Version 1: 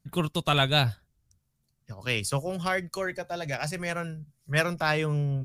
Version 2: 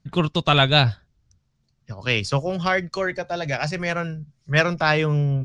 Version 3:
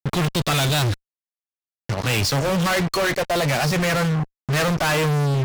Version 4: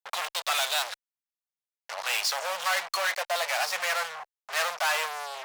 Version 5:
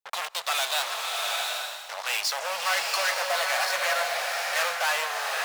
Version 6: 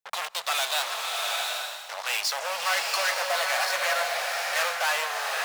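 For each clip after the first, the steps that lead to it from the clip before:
LPF 6000 Hz 24 dB/oct; gain +6.5 dB
fuzz box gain 41 dB, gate -39 dBFS; gain -5.5 dB
inverse Chebyshev high-pass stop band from 330 Hz, stop band 40 dB; gain -4 dB
bloom reverb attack 0.79 s, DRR 0.5 dB
notches 60/120/180 Hz

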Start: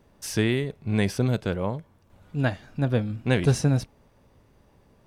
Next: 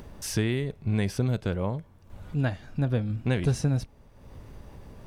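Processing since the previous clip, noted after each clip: upward compressor, threshold -39 dBFS; low shelf 90 Hz +10 dB; compressor 2:1, threshold -25 dBFS, peak gain reduction 7.5 dB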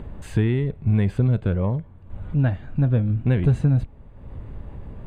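low shelf 210 Hz +7.5 dB; in parallel at -6 dB: soft clip -23 dBFS, distortion -8 dB; on the sum: running mean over 8 samples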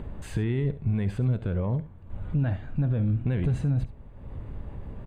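limiter -16.5 dBFS, peak gain reduction 8 dB; echo 70 ms -15.5 dB; gain -1.5 dB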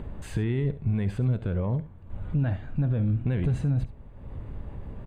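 nothing audible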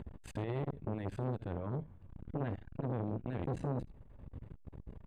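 core saturation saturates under 520 Hz; gain -6 dB

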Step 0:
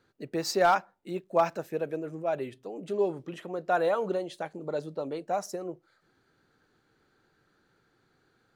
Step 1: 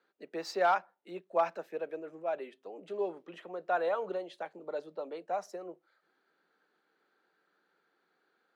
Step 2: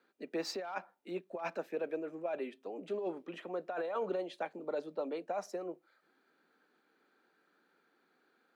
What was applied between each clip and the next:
elliptic high-pass 170 Hz; three-band isolator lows -12 dB, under 400 Hz, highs -12 dB, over 4300 Hz; gain -3 dB
small resonant body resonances 250/2400 Hz, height 8 dB, ringing for 35 ms; negative-ratio compressor -34 dBFS, ratio -1; gain -1.5 dB

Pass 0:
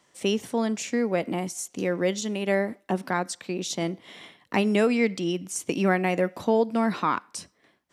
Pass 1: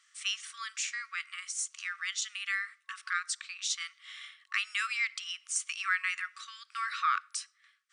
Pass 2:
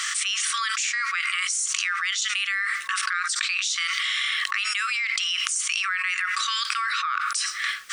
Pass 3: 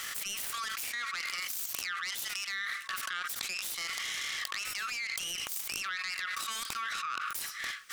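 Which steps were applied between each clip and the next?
FFT band-pass 1100–9800 Hz
fast leveller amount 100%; gain -1 dB
self-modulated delay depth 0.43 ms; gain -9 dB

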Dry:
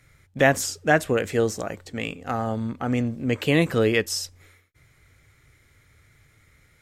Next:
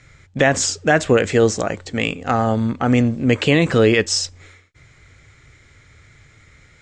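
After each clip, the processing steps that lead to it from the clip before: elliptic low-pass 7600 Hz, stop band 80 dB; maximiser +13 dB; gain -3.5 dB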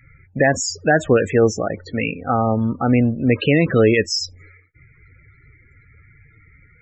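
loudest bins only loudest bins 32

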